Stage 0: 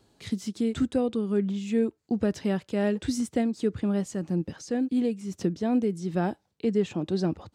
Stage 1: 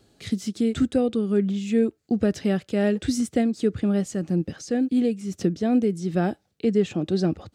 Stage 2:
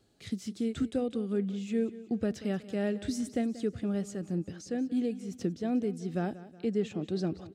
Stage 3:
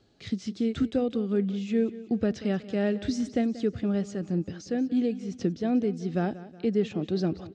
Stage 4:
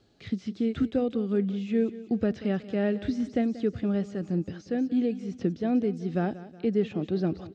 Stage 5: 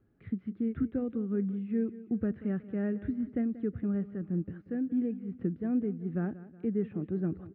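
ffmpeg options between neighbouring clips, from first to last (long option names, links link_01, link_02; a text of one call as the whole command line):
ffmpeg -i in.wav -af "equalizer=frequency=960:width_type=o:width=0.26:gain=-12,volume=4dB" out.wav
ffmpeg -i in.wav -af "aecho=1:1:184|368|552|736:0.15|0.0688|0.0317|0.0146,volume=-9dB" out.wav
ffmpeg -i in.wav -af "lowpass=frequency=6100:width=0.5412,lowpass=frequency=6100:width=1.3066,volume=4.5dB" out.wav
ffmpeg -i in.wav -filter_complex "[0:a]acrossover=split=3500[link_01][link_02];[link_02]acompressor=threshold=-59dB:ratio=4:attack=1:release=60[link_03];[link_01][link_03]amix=inputs=2:normalize=0" out.wav
ffmpeg -i in.wav -af "lowpass=frequency=1700:width=0.5412,lowpass=frequency=1700:width=1.3066,equalizer=frequency=710:width_type=o:width=1.5:gain=-11.5,volume=-2dB" out.wav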